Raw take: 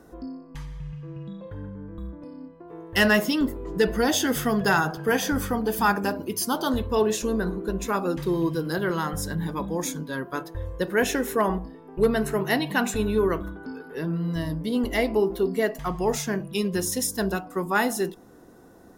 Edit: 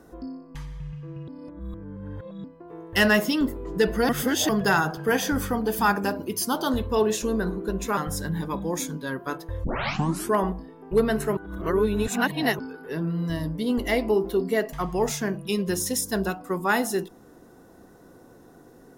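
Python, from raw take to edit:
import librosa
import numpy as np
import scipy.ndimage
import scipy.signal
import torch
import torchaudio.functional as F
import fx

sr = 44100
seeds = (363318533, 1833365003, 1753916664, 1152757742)

y = fx.edit(x, sr, fx.reverse_span(start_s=1.28, length_s=1.16),
    fx.reverse_span(start_s=4.09, length_s=0.4),
    fx.cut(start_s=7.97, length_s=1.06),
    fx.tape_start(start_s=10.7, length_s=0.72),
    fx.reverse_span(start_s=12.43, length_s=1.22), tone=tone)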